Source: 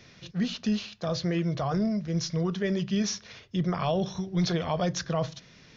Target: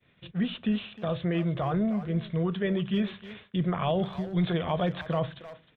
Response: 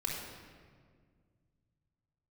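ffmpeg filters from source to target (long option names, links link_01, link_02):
-filter_complex "[0:a]agate=range=-33dB:threshold=-45dB:ratio=3:detection=peak,aresample=8000,aresample=44100,asplit=2[link_01][link_02];[link_02]adelay=310,highpass=300,lowpass=3400,asoftclip=type=hard:threshold=-27dB,volume=-12dB[link_03];[link_01][link_03]amix=inputs=2:normalize=0"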